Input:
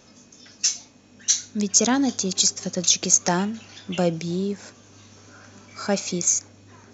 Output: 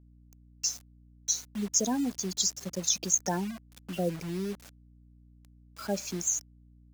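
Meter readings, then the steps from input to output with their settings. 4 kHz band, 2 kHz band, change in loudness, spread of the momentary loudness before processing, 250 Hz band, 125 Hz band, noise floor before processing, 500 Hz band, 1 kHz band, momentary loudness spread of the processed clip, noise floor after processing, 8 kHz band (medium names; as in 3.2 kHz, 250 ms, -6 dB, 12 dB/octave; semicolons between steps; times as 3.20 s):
-9.5 dB, -12.0 dB, -8.5 dB, 12 LU, -8.0 dB, -8.0 dB, -53 dBFS, -8.5 dB, -9.0 dB, 12 LU, -58 dBFS, no reading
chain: spectral gate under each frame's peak -15 dB strong; bit crusher 6-bit; hum 60 Hz, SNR 23 dB; trim -8 dB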